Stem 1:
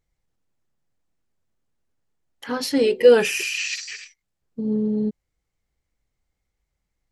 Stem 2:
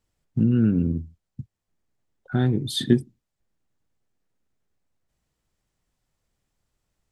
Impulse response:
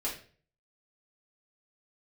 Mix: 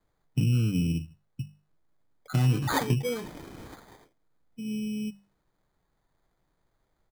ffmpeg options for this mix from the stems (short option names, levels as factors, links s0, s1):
-filter_complex "[0:a]asubboost=boost=6:cutoff=230,volume=0.133[s0];[1:a]acrossover=split=150[s1][s2];[s2]acompressor=threshold=0.0316:ratio=10[s3];[s1][s3]amix=inputs=2:normalize=0,lowpass=f=5100:t=q:w=3.2,aecho=1:1:6.6:0.5,volume=1[s4];[s0][s4]amix=inputs=2:normalize=0,bandreject=f=50:t=h:w=6,bandreject=f=100:t=h:w=6,bandreject=f=150:t=h:w=6,bandreject=f=200:t=h:w=6,acrusher=samples=16:mix=1:aa=0.000001"